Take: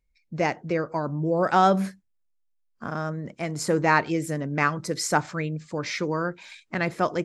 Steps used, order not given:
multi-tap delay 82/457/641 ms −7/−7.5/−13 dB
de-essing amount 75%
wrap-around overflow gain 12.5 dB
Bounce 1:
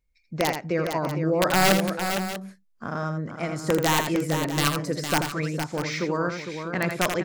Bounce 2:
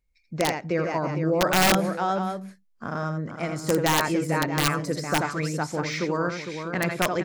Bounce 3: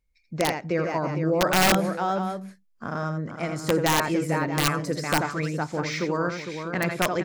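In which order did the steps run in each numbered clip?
de-essing, then wrap-around overflow, then multi-tap delay
multi-tap delay, then de-essing, then wrap-around overflow
de-essing, then multi-tap delay, then wrap-around overflow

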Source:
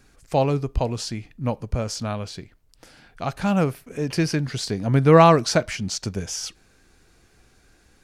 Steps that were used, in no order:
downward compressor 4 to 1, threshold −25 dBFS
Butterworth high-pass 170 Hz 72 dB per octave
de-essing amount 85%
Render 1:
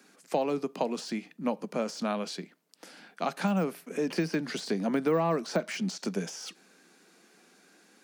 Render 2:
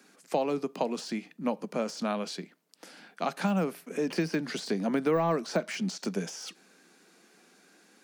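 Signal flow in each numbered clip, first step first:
de-essing, then Butterworth high-pass, then downward compressor
Butterworth high-pass, then de-essing, then downward compressor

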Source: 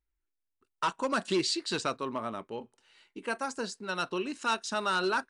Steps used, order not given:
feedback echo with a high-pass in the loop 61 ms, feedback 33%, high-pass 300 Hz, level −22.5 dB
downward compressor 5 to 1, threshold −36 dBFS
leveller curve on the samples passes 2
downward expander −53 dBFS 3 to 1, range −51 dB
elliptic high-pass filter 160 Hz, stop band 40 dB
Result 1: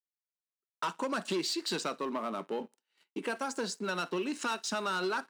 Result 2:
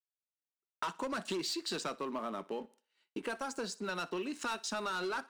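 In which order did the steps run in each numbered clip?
downward compressor, then feedback echo with a high-pass in the loop, then downward expander, then leveller curve on the samples, then elliptic high-pass filter
elliptic high-pass filter, then downward expander, then leveller curve on the samples, then feedback echo with a high-pass in the loop, then downward compressor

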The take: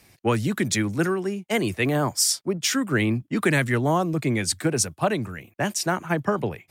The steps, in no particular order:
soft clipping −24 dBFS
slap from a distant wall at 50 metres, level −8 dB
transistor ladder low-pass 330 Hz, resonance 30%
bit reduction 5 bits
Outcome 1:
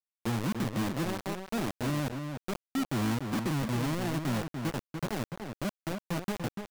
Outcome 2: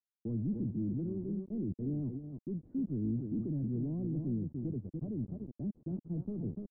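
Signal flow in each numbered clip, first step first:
transistor ladder low-pass, then bit reduction, then slap from a distant wall, then soft clipping
slap from a distant wall, then bit reduction, then soft clipping, then transistor ladder low-pass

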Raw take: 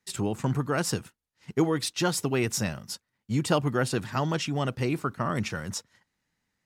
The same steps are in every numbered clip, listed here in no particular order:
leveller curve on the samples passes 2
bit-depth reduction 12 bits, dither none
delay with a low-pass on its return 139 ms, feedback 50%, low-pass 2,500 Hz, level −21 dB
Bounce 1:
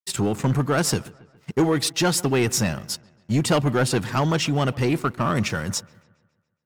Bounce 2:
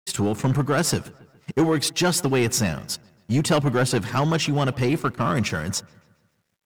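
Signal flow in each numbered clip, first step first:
leveller curve on the samples, then bit-depth reduction, then delay with a low-pass on its return
leveller curve on the samples, then delay with a low-pass on its return, then bit-depth reduction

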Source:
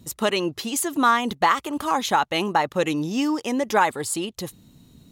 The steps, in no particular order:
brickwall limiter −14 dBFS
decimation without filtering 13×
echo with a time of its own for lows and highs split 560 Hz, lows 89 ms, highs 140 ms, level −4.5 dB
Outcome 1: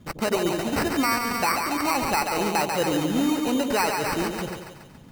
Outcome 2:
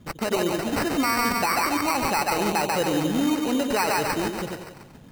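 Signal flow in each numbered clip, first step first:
decimation without filtering, then echo with a time of its own for lows and highs, then brickwall limiter
echo with a time of its own for lows and highs, then brickwall limiter, then decimation without filtering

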